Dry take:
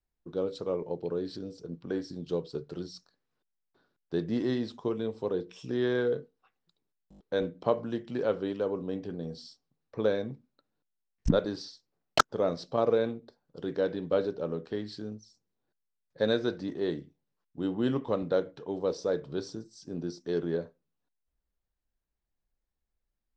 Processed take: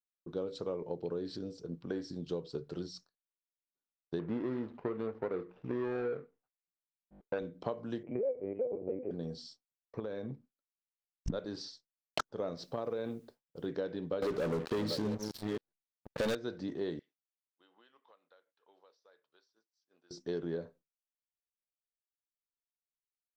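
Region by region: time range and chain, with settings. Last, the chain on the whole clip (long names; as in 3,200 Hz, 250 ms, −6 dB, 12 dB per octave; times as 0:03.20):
0:04.19–0:07.39: running median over 41 samples + low-pass filter 2,700 Hz + parametric band 1,100 Hz +8 dB 2.6 octaves
0:08.03–0:09.11: drawn EQ curve 120 Hz 0 dB, 360 Hz +4 dB, 580 Hz +12 dB, 1,500 Hz −19 dB, 2,300 Hz +8 dB, 3,500 Hz −28 dB + linear-prediction vocoder at 8 kHz pitch kept + band-pass filter 180–2,200 Hz
0:09.99–0:11.28: high-shelf EQ 3,900 Hz −9 dB + downward compressor 12 to 1, threshold −33 dBFS
0:12.57–0:13.66: bit-depth reduction 12 bits, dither triangular + downward compressor 2.5 to 1, threshold −28 dBFS + one half of a high-frequency compander decoder only
0:14.22–0:16.35: delay that plays each chunk backwards 464 ms, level −12 dB + leveller curve on the samples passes 5
0:16.99–0:20.11: high-pass filter 1,200 Hz + downward compressor 20 to 1, threshold −51 dBFS + high-frequency loss of the air 130 metres
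whole clip: downward expander −50 dBFS; downward compressor 6 to 1, threshold −31 dBFS; level −1.5 dB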